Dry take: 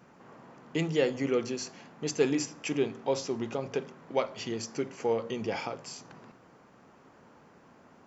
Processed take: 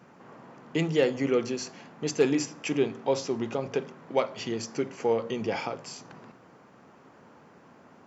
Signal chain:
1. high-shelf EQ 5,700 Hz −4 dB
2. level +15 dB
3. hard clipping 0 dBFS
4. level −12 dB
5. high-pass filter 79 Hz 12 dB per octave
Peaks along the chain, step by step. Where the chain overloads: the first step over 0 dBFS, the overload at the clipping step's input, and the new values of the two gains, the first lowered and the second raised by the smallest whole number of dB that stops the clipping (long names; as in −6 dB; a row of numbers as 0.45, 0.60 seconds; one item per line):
−12.0, +3.0, 0.0, −12.0, −11.0 dBFS
step 2, 3.0 dB
step 2 +12 dB, step 4 −9 dB